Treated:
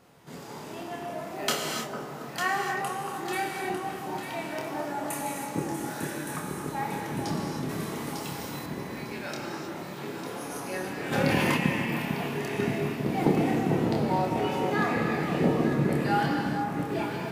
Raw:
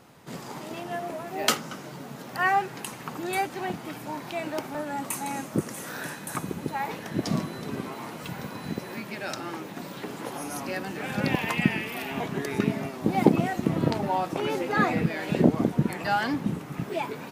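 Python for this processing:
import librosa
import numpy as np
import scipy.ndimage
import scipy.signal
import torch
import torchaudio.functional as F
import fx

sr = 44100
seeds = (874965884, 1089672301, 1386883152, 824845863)

y = fx.doubler(x, sr, ms=27.0, db=-5)
y = fx.echo_alternate(y, sr, ms=450, hz=1300.0, feedback_pct=67, wet_db=-5.0)
y = fx.rev_gated(y, sr, seeds[0], gate_ms=340, shape='flat', drr_db=0.5)
y = np.clip(10.0 ** (6.5 / 20.0) * y, -1.0, 1.0) / 10.0 ** (6.5 / 20.0)
y = fx.high_shelf(y, sr, hz=3900.0, db=8.5, at=(7.69, 8.66))
y = fx.env_flatten(y, sr, amount_pct=50, at=(11.11, 11.56), fade=0.02)
y = F.gain(torch.from_numpy(y), -6.0).numpy()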